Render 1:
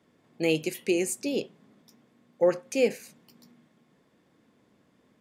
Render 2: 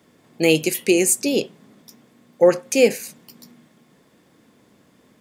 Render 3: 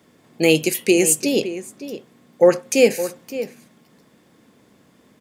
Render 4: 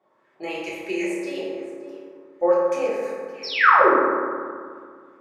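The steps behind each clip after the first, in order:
treble shelf 5.8 kHz +8.5 dB; trim +8.5 dB
echo from a far wall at 97 m, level -12 dB; trim +1 dB
painted sound fall, 3.43–3.94 s, 220–5800 Hz -10 dBFS; LFO band-pass saw up 2.9 Hz 730–2000 Hz; reverberation RT60 2.1 s, pre-delay 3 ms, DRR -8.5 dB; trim -6 dB

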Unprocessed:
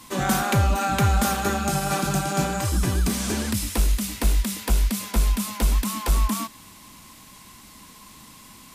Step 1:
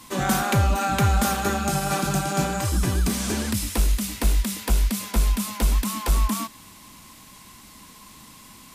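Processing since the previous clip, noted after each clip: no audible change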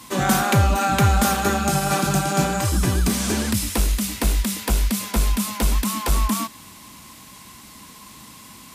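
high-pass 51 Hz; trim +3.5 dB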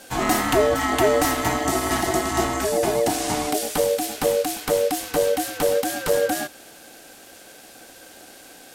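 ring modulator 520 Hz; trim +1 dB

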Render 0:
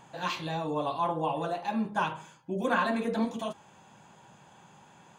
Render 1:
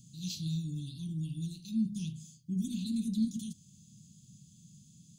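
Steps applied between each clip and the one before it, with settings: inverse Chebyshev band-stop 520–1800 Hz, stop band 60 dB; trim +5 dB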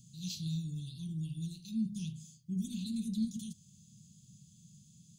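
peaking EQ 280 Hz -13.5 dB 0.23 oct; trim -1.5 dB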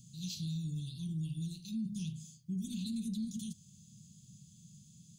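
peak limiter -33 dBFS, peak gain reduction 8 dB; trim +1.5 dB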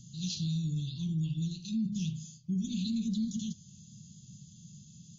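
trim +5.5 dB; WMA 32 kbps 16 kHz

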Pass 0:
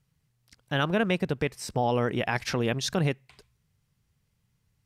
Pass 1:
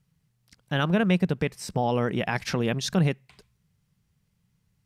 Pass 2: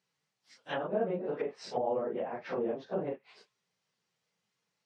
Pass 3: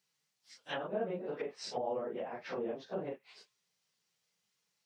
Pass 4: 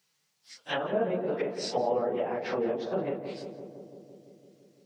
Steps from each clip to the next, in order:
peaking EQ 180 Hz +7.5 dB 0.5 oct
phase randomisation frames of 100 ms; Chebyshev band-pass 500–5900 Hz, order 2; low-pass that closes with the level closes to 580 Hz, closed at -27.5 dBFS
treble shelf 2.8 kHz +11 dB; trim -5 dB
filtered feedback delay 169 ms, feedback 78%, low-pass 1.2 kHz, level -7.5 dB; trim +7.5 dB

